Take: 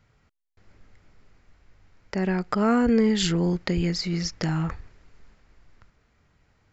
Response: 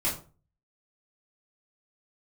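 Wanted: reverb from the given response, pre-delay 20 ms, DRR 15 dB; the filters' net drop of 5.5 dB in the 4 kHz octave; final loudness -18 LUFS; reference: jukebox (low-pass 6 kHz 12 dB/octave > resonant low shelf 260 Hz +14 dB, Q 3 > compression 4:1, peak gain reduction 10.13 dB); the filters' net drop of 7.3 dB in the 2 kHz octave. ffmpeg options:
-filter_complex "[0:a]equalizer=f=2000:t=o:g=-8.5,equalizer=f=4000:t=o:g=-3.5,asplit=2[s0][s1];[1:a]atrim=start_sample=2205,adelay=20[s2];[s1][s2]afir=irnorm=-1:irlink=0,volume=0.0708[s3];[s0][s3]amix=inputs=2:normalize=0,lowpass=6000,lowshelf=f=260:t=q:w=3:g=14,acompressor=threshold=0.251:ratio=4,volume=0.708"

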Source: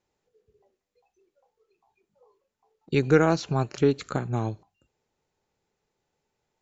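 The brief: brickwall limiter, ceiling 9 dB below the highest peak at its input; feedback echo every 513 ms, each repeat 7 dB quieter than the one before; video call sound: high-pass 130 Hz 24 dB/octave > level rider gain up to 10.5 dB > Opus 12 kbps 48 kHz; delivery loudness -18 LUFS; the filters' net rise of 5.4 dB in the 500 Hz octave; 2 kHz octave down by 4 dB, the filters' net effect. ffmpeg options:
-af "equalizer=f=500:t=o:g=6.5,equalizer=f=2000:t=o:g=-6.5,alimiter=limit=0.251:level=0:latency=1,highpass=f=130:w=0.5412,highpass=f=130:w=1.3066,aecho=1:1:513|1026|1539|2052|2565:0.447|0.201|0.0905|0.0407|0.0183,dynaudnorm=m=3.35,volume=2.51" -ar 48000 -c:a libopus -b:a 12k

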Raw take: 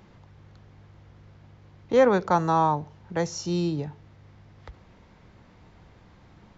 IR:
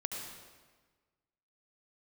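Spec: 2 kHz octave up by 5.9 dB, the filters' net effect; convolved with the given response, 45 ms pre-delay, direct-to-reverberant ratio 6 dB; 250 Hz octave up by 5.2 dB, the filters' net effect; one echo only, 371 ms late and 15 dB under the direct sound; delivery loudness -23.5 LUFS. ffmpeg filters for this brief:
-filter_complex "[0:a]equalizer=f=250:t=o:g=7.5,equalizer=f=2000:t=o:g=7.5,aecho=1:1:371:0.178,asplit=2[s0][s1];[1:a]atrim=start_sample=2205,adelay=45[s2];[s1][s2]afir=irnorm=-1:irlink=0,volume=0.422[s3];[s0][s3]amix=inputs=2:normalize=0,volume=0.75"

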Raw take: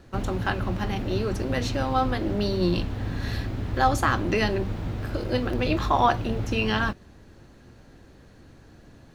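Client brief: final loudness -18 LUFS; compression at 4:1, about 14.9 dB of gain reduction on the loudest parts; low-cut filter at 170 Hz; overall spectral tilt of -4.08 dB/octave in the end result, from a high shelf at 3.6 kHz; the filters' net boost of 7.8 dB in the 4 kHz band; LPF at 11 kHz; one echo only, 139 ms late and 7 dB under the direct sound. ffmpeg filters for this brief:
-af "highpass=170,lowpass=11000,highshelf=f=3600:g=8.5,equalizer=f=4000:t=o:g=4.5,acompressor=threshold=0.0224:ratio=4,aecho=1:1:139:0.447,volume=6.68"

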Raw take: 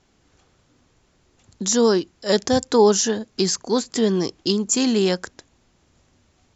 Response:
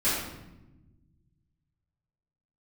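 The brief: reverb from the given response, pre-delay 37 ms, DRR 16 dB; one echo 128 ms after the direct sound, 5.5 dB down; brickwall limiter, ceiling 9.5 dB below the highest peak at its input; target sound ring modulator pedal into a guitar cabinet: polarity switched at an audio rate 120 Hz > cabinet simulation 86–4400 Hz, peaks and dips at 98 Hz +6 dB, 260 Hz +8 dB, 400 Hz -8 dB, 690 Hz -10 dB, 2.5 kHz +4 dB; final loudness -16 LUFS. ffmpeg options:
-filter_complex "[0:a]alimiter=limit=0.188:level=0:latency=1,aecho=1:1:128:0.531,asplit=2[s0][s1];[1:a]atrim=start_sample=2205,adelay=37[s2];[s1][s2]afir=irnorm=-1:irlink=0,volume=0.0398[s3];[s0][s3]amix=inputs=2:normalize=0,aeval=exprs='val(0)*sgn(sin(2*PI*120*n/s))':c=same,highpass=86,equalizer=f=98:t=q:w=4:g=6,equalizer=f=260:t=q:w=4:g=8,equalizer=f=400:t=q:w=4:g=-8,equalizer=f=690:t=q:w=4:g=-10,equalizer=f=2500:t=q:w=4:g=4,lowpass=f=4400:w=0.5412,lowpass=f=4400:w=1.3066,volume=2.51"

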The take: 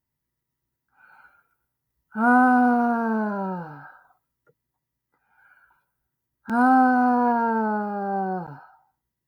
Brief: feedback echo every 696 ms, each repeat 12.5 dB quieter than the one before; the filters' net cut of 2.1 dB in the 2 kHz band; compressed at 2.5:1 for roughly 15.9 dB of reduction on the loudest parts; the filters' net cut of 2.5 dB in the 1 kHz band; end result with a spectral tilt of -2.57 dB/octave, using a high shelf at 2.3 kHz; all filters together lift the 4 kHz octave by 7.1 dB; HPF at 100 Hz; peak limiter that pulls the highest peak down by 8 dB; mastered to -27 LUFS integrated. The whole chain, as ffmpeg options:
-af "highpass=100,equalizer=f=1000:t=o:g=-4,equalizer=f=2000:t=o:g=-4.5,highshelf=f=2300:g=6,equalizer=f=4000:t=o:g=4.5,acompressor=threshold=0.00891:ratio=2.5,alimiter=level_in=2.11:limit=0.0631:level=0:latency=1,volume=0.473,aecho=1:1:696|1392|2088:0.237|0.0569|0.0137,volume=3.98"

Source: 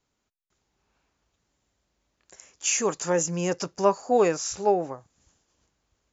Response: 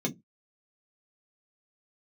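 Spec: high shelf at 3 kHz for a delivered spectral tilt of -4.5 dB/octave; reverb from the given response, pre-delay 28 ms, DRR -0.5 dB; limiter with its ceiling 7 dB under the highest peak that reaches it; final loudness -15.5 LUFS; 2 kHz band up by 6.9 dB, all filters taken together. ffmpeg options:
-filter_complex "[0:a]equalizer=f=2000:t=o:g=6,highshelf=f=3000:g=7,alimiter=limit=0.251:level=0:latency=1,asplit=2[s0][s1];[1:a]atrim=start_sample=2205,adelay=28[s2];[s1][s2]afir=irnorm=-1:irlink=0,volume=0.562[s3];[s0][s3]amix=inputs=2:normalize=0,volume=1.41"

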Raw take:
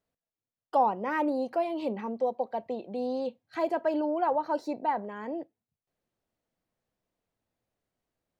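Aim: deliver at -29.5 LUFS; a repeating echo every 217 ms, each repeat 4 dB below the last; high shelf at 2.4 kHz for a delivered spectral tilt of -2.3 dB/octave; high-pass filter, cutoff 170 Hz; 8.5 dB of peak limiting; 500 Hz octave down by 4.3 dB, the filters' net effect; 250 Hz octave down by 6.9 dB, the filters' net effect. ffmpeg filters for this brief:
-af "highpass=170,equalizer=f=250:t=o:g=-6.5,equalizer=f=500:t=o:g=-4.5,highshelf=f=2400:g=4.5,alimiter=level_in=1.19:limit=0.0631:level=0:latency=1,volume=0.841,aecho=1:1:217|434|651|868|1085|1302|1519|1736|1953:0.631|0.398|0.25|0.158|0.0994|0.0626|0.0394|0.0249|0.0157,volume=1.78"

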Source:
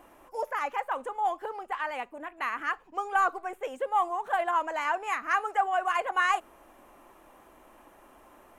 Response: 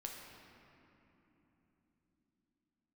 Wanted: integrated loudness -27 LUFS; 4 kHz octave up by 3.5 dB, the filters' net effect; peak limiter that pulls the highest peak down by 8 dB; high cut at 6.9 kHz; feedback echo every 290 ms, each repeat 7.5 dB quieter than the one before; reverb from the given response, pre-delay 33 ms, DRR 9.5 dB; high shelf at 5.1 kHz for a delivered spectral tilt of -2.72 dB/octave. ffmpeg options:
-filter_complex "[0:a]lowpass=6900,equalizer=f=4000:t=o:g=8.5,highshelf=f=5100:g=-6,alimiter=limit=0.0944:level=0:latency=1,aecho=1:1:290|580|870|1160|1450:0.422|0.177|0.0744|0.0312|0.0131,asplit=2[s0][s1];[1:a]atrim=start_sample=2205,adelay=33[s2];[s1][s2]afir=irnorm=-1:irlink=0,volume=0.447[s3];[s0][s3]amix=inputs=2:normalize=0,volume=1.5"

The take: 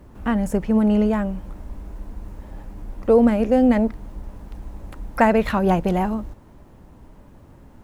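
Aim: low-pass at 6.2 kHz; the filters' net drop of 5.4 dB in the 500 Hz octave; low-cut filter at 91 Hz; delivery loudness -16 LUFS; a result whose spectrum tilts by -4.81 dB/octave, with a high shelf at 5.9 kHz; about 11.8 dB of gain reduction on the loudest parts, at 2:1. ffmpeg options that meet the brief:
-af "highpass=91,lowpass=6200,equalizer=f=500:t=o:g=-6.5,highshelf=f=5900:g=4.5,acompressor=threshold=0.0158:ratio=2,volume=6.68"

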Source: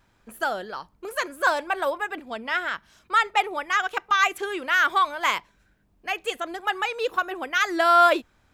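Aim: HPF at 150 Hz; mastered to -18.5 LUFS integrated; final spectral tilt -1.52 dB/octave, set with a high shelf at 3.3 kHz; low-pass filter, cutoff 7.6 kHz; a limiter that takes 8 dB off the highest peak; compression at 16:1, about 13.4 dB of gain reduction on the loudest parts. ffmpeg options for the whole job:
-af "highpass=150,lowpass=7600,highshelf=f=3300:g=6,acompressor=threshold=0.0501:ratio=16,volume=5.96,alimiter=limit=0.447:level=0:latency=1"

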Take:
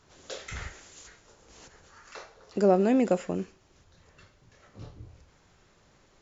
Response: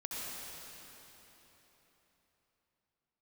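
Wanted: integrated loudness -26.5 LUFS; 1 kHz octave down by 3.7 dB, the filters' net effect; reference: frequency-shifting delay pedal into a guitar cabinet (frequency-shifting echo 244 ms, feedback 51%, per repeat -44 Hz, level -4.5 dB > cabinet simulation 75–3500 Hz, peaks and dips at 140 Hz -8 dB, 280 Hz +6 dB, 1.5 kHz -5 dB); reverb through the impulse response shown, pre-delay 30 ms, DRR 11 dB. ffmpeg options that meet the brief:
-filter_complex "[0:a]equalizer=f=1000:t=o:g=-6,asplit=2[s0][s1];[1:a]atrim=start_sample=2205,adelay=30[s2];[s1][s2]afir=irnorm=-1:irlink=0,volume=0.211[s3];[s0][s3]amix=inputs=2:normalize=0,asplit=8[s4][s5][s6][s7][s8][s9][s10][s11];[s5]adelay=244,afreqshift=-44,volume=0.596[s12];[s6]adelay=488,afreqshift=-88,volume=0.305[s13];[s7]adelay=732,afreqshift=-132,volume=0.155[s14];[s8]adelay=976,afreqshift=-176,volume=0.0794[s15];[s9]adelay=1220,afreqshift=-220,volume=0.0403[s16];[s10]adelay=1464,afreqshift=-264,volume=0.0207[s17];[s11]adelay=1708,afreqshift=-308,volume=0.0105[s18];[s4][s12][s13][s14][s15][s16][s17][s18]amix=inputs=8:normalize=0,highpass=75,equalizer=f=140:t=q:w=4:g=-8,equalizer=f=280:t=q:w=4:g=6,equalizer=f=1500:t=q:w=4:g=-5,lowpass=f=3500:w=0.5412,lowpass=f=3500:w=1.3066,volume=0.794"

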